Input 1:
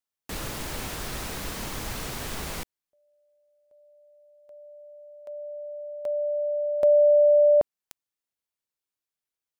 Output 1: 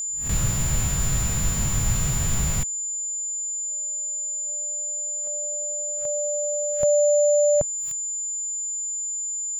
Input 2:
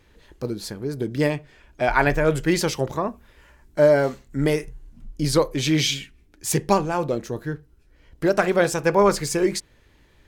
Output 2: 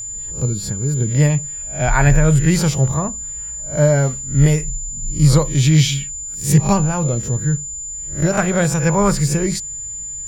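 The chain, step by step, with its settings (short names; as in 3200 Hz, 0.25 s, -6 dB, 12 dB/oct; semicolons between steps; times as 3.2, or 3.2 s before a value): spectral swells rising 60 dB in 0.31 s; whine 7100 Hz -26 dBFS; resonant low shelf 210 Hz +12 dB, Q 1.5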